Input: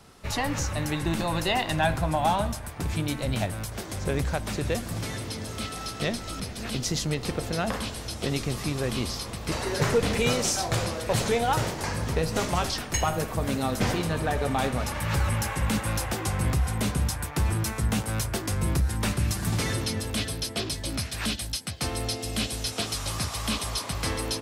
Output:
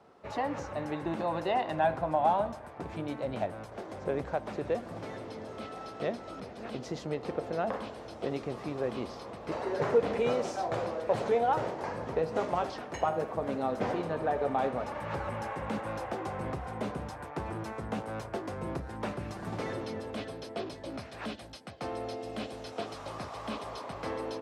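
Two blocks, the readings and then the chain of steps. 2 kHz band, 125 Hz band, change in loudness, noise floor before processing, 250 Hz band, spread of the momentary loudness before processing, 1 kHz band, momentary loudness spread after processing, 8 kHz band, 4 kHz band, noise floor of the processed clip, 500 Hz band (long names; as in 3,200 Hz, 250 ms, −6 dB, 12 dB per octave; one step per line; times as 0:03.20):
−9.5 dB, −14.0 dB, −6.0 dB, −38 dBFS, −7.0 dB, 7 LU, −2.0 dB, 13 LU, −22.5 dB, −16.0 dB, −46 dBFS, −1.0 dB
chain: resonant band-pass 590 Hz, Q 1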